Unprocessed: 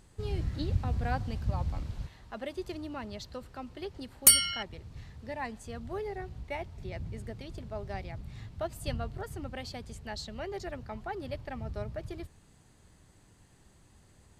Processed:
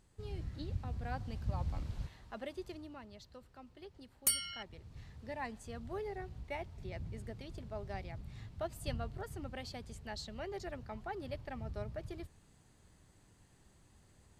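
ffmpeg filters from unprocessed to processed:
ffmpeg -i in.wav -af "volume=5.5dB,afade=type=in:start_time=1.04:duration=1.01:silence=0.446684,afade=type=out:start_time=2.05:duration=1.01:silence=0.316228,afade=type=in:start_time=4.38:duration=0.76:silence=0.398107" out.wav

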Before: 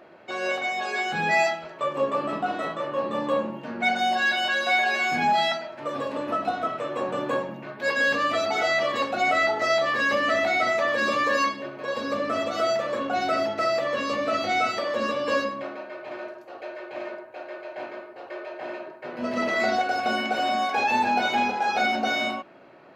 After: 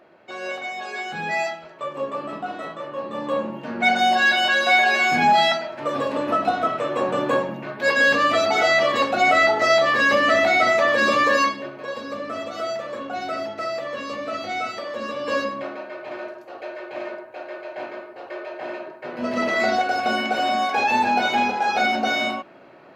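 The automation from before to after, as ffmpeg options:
ffmpeg -i in.wav -af "volume=12dB,afade=type=in:start_time=3.09:duration=0.87:silence=0.375837,afade=type=out:start_time=11.23:duration=0.81:silence=0.354813,afade=type=in:start_time=15.07:duration=0.5:silence=0.473151" out.wav

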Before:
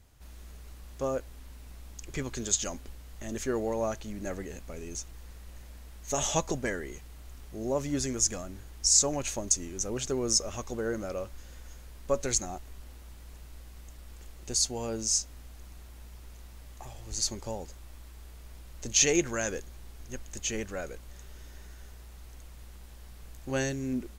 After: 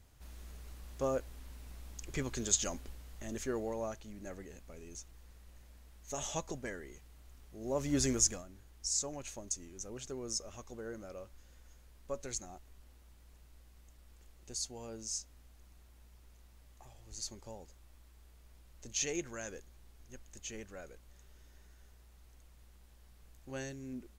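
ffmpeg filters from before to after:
ffmpeg -i in.wav -af "volume=8.5dB,afade=type=out:start_time=2.77:duration=1.27:silence=0.421697,afade=type=in:start_time=7.6:duration=0.49:silence=0.281838,afade=type=out:start_time=8.09:duration=0.36:silence=0.223872" out.wav

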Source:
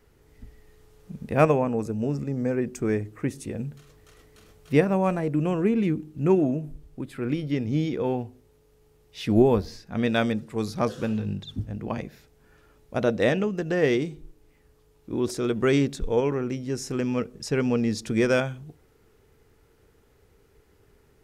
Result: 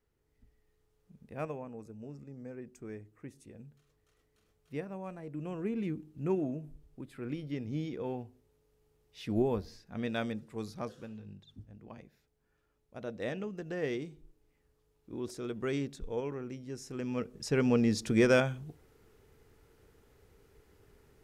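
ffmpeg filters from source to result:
ffmpeg -i in.wav -af "volume=5.5dB,afade=type=in:start_time=5.16:duration=0.68:silence=0.398107,afade=type=out:start_time=10.59:duration=0.5:silence=0.398107,afade=type=in:start_time=12.96:duration=0.54:silence=0.473151,afade=type=in:start_time=16.92:duration=0.83:silence=0.316228" out.wav

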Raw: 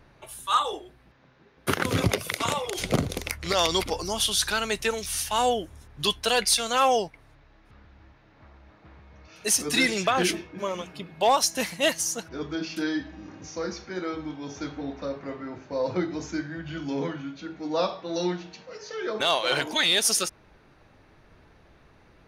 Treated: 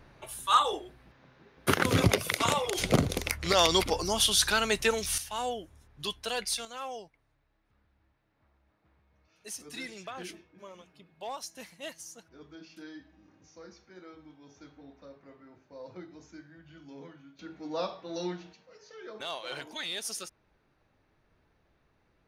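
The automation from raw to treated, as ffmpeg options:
ffmpeg -i in.wav -af "asetnsamples=nb_out_samples=441:pad=0,asendcmd='5.18 volume volume -10dB;6.65 volume volume -18dB;17.39 volume volume -7.5dB;18.53 volume volume -14dB',volume=0dB" out.wav

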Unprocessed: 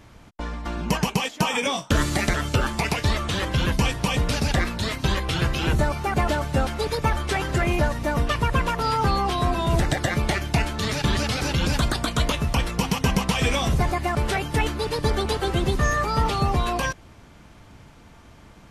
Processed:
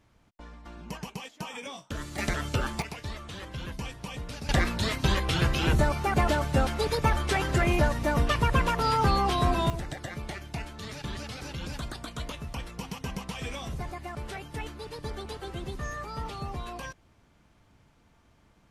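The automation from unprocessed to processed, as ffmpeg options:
ffmpeg -i in.wav -af "asetnsamples=nb_out_samples=441:pad=0,asendcmd='2.18 volume volume -6.5dB;2.82 volume volume -15dB;4.49 volume volume -2dB;9.7 volume volume -14dB',volume=-15.5dB" out.wav

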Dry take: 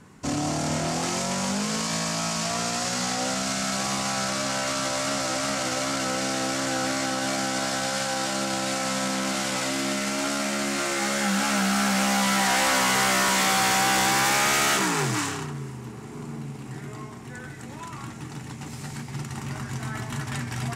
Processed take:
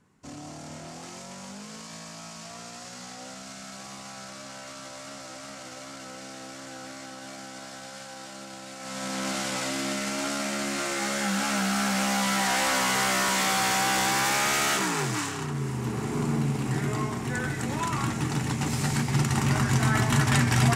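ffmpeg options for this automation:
ffmpeg -i in.wav -af "volume=9dB,afade=type=in:start_time=8.77:duration=0.49:silence=0.266073,afade=type=in:start_time=15.33:duration=0.66:silence=0.251189" out.wav

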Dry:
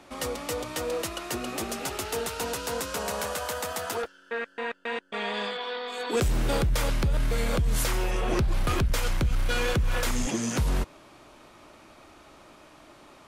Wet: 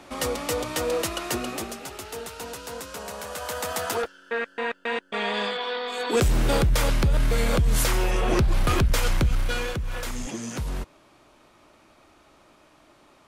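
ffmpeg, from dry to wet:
ffmpeg -i in.wav -af "volume=13.5dB,afade=type=out:start_time=1.31:duration=0.49:silence=0.334965,afade=type=in:start_time=3.25:duration=0.54:silence=0.354813,afade=type=out:start_time=9.21:duration=0.52:silence=0.375837" out.wav

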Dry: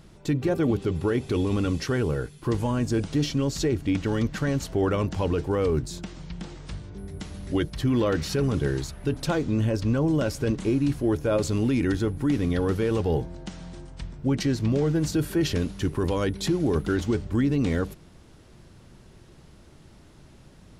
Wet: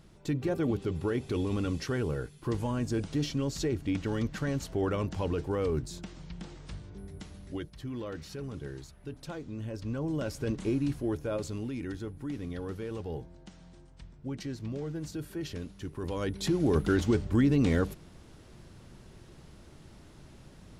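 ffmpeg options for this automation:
ffmpeg -i in.wav -af "volume=15.5dB,afade=type=out:start_time=6.98:duration=0.74:silence=0.354813,afade=type=in:start_time=9.57:duration=1.14:silence=0.334965,afade=type=out:start_time=10.71:duration=0.99:silence=0.421697,afade=type=in:start_time=15.94:duration=0.88:silence=0.251189" out.wav

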